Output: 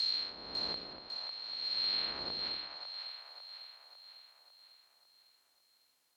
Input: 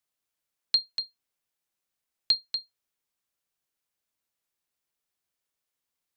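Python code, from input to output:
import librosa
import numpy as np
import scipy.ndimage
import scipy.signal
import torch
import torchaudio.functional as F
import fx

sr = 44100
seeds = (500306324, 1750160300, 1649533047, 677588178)

p1 = fx.spec_swells(x, sr, rise_s=2.2)
p2 = fx.lowpass(p1, sr, hz=2900.0, slope=12, at=(0.93, 2.48))
p3 = fx.env_lowpass_down(p2, sr, base_hz=850.0, full_db=-26.0)
p4 = scipy.signal.sosfilt(scipy.signal.butter(2, 60.0, 'highpass', fs=sr, output='sos'), p3)
p5 = fx.peak_eq(p4, sr, hz=120.0, db=-11.0, octaves=0.69)
p6 = p5 + fx.echo_split(p5, sr, split_hz=610.0, low_ms=89, high_ms=550, feedback_pct=52, wet_db=-5.5, dry=0)
p7 = fx.end_taper(p6, sr, db_per_s=120.0)
y = F.gain(torch.from_numpy(p7), 5.0).numpy()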